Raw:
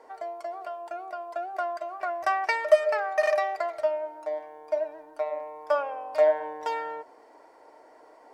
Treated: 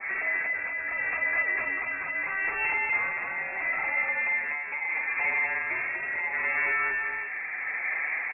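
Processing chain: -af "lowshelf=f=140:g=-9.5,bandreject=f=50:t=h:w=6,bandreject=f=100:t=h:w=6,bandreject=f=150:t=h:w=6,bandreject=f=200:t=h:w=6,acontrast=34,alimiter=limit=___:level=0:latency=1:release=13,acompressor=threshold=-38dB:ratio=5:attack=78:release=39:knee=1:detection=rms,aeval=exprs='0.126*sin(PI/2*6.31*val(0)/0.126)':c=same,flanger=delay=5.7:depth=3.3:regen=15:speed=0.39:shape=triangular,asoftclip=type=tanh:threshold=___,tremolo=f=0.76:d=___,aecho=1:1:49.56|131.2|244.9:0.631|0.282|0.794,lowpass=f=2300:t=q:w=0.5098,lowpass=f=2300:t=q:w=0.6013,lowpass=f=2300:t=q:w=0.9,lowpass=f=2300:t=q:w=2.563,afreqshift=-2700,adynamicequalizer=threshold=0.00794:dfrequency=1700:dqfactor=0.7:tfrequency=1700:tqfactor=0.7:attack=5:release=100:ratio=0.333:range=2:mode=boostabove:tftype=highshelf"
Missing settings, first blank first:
-15.5dB, -30.5dB, 0.5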